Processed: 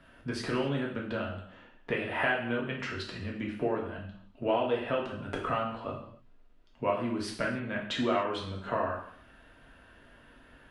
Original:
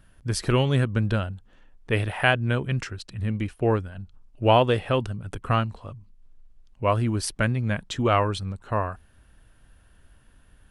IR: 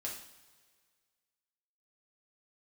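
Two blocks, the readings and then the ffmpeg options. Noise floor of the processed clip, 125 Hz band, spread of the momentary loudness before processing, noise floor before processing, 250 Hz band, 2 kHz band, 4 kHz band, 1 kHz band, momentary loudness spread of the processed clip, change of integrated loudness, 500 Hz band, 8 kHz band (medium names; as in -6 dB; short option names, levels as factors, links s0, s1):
-58 dBFS, -15.5 dB, 14 LU, -57 dBFS, -5.5 dB, -5.0 dB, -7.0 dB, -7.0 dB, 12 LU, -7.5 dB, -6.0 dB, -13.5 dB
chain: -filter_complex "[0:a]acompressor=threshold=0.0251:ratio=12,acrossover=split=180 4000:gain=0.178 1 0.141[s0][s1][s2];[s0][s1][s2]amix=inputs=3:normalize=0[s3];[1:a]atrim=start_sample=2205,afade=t=out:st=0.35:d=0.01,atrim=end_sample=15876[s4];[s3][s4]afir=irnorm=-1:irlink=0,volume=2.66"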